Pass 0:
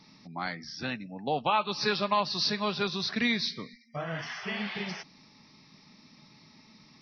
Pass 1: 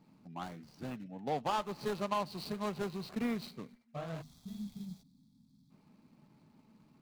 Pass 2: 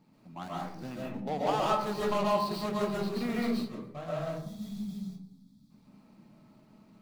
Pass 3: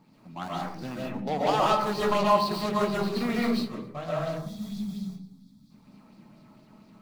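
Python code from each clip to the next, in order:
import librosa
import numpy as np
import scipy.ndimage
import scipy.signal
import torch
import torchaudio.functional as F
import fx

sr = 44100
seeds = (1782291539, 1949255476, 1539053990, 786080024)

y1 = scipy.signal.medfilt(x, 25)
y1 = fx.spec_box(y1, sr, start_s=4.22, length_s=1.49, low_hz=300.0, high_hz=3200.0, gain_db=-21)
y1 = F.gain(torch.from_numpy(y1), -4.5).numpy()
y2 = fx.rev_freeverb(y1, sr, rt60_s=0.68, hf_ratio=0.35, predelay_ms=95, drr_db=-5.0)
y3 = fx.bell_lfo(y2, sr, hz=4.3, low_hz=950.0, high_hz=5000.0, db=6)
y3 = F.gain(torch.from_numpy(y3), 4.0).numpy()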